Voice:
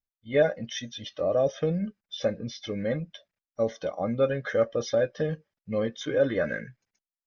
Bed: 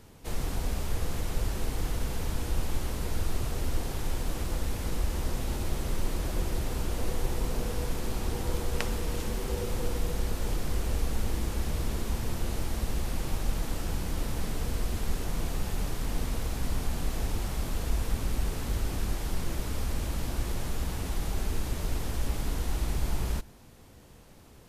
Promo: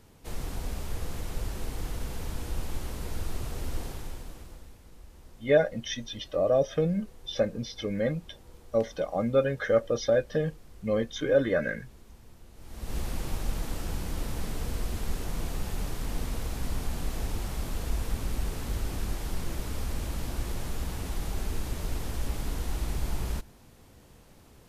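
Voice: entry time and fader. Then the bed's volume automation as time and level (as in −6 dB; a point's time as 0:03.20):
5.15 s, +0.5 dB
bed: 0:03.85 −3.5 dB
0:04.83 −21 dB
0:12.53 −21 dB
0:12.96 −1.5 dB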